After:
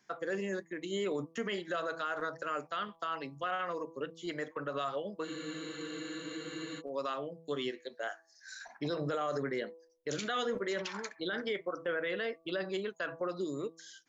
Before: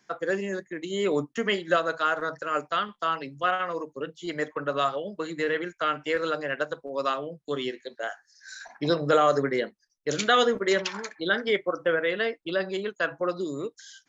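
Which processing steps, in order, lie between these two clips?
hum removal 164.3 Hz, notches 7
brickwall limiter −21 dBFS, peak gain reduction 11.5 dB
frozen spectrum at 0:05.26, 1.54 s
level −5 dB

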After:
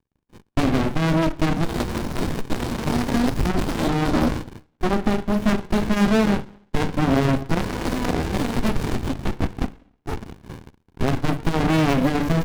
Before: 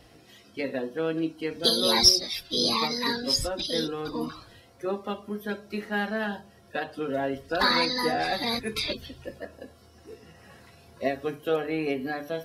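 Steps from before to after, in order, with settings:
dynamic equaliser 110 Hz, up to −3 dB, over −47 dBFS, Q 0.78
in parallel at −2 dB: downward compressor 6 to 1, threshold −39 dBFS, peak gain reduction 24.5 dB
on the sum: leveller curve on the samples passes 5
downward expander −32 dBFS
on a send at −14 dB: convolution reverb, pre-delay 45 ms
on the sum: windowed peak hold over 65 samples
level −2 dB

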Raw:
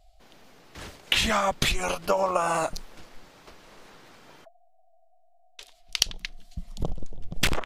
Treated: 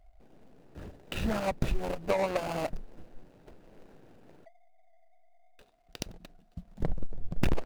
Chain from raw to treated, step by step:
running median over 41 samples
0:05.60–0:06.82: high-pass filter 58 Hz → 150 Hz 6 dB per octave

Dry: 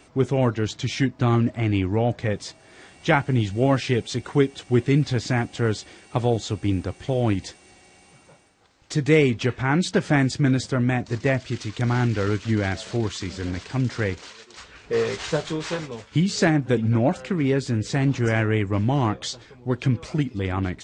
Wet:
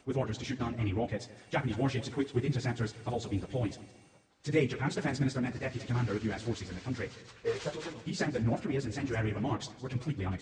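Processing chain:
echo machine with several playback heads 109 ms, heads first and third, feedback 48%, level −18 dB
time stretch by phase vocoder 0.5×
level −7 dB

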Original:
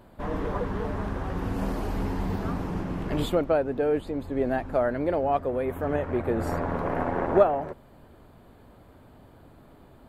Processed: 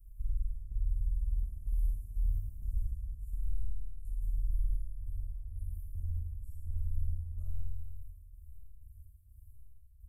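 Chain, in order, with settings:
inverse Chebyshev band-stop filter 250–3,600 Hz, stop band 60 dB
high-shelf EQ 4,900 Hz −6.5 dB
comb filter 3.3 ms, depth 88%
downward compressor, threshold −33 dBFS, peak gain reduction 9.5 dB
gate pattern "xx.xxx.x.x.x.." 63 BPM −12 dB
convolution reverb RT60 1.6 s, pre-delay 28 ms, DRR −3.5 dB
level +1 dB

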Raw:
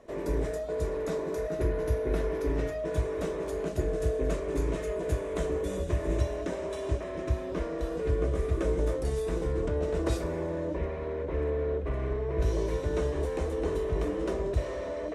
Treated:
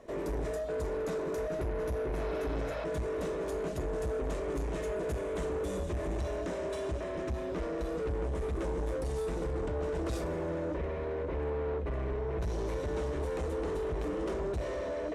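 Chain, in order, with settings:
healed spectral selection 0:02.19–0:02.81, 480–5,500 Hz before
in parallel at +1.5 dB: brickwall limiter −24 dBFS, peak gain reduction 9 dB
on the sum: soft clipping −24 dBFS, distortion −11 dB
level −5.5 dB

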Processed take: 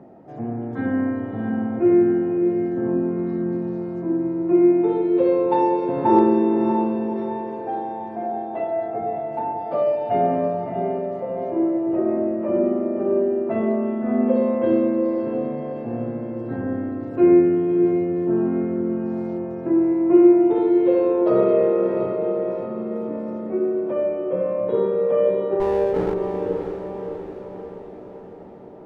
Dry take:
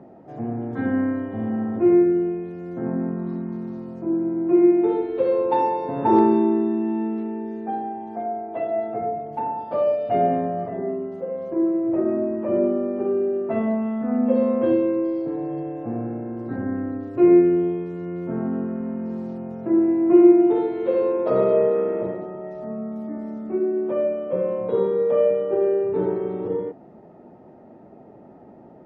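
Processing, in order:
0:25.60–0:26.14: lower of the sound and its delayed copy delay 0.44 ms
feedback delay with all-pass diffusion 622 ms, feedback 56%, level −7 dB

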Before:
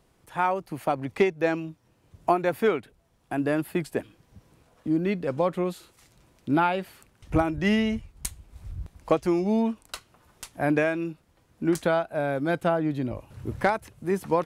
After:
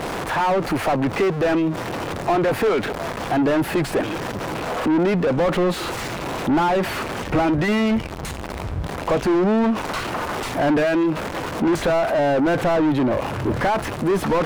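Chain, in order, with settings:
converter with a step at zero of −37 dBFS
mid-hump overdrive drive 35 dB, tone 1,000 Hz, clips at −9.5 dBFS
level −1 dB

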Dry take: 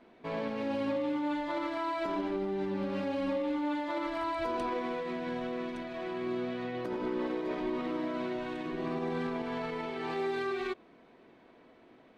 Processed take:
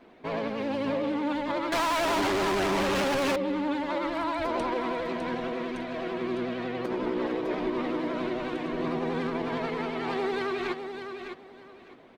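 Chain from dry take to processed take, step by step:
pitch vibrato 11 Hz 69 cents
repeating echo 605 ms, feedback 21%, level −8 dB
0:01.72–0:03.36: mid-hump overdrive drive 35 dB, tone 5,300 Hz, clips at −25 dBFS
harmonic and percussive parts rebalanced harmonic −4 dB
level +6.5 dB

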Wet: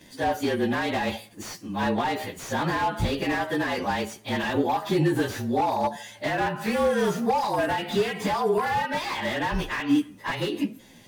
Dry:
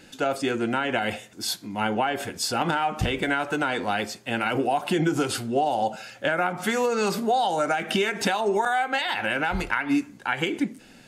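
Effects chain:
partials spread apart or drawn together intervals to 110%
slew-rate limiting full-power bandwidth 55 Hz
level +3 dB

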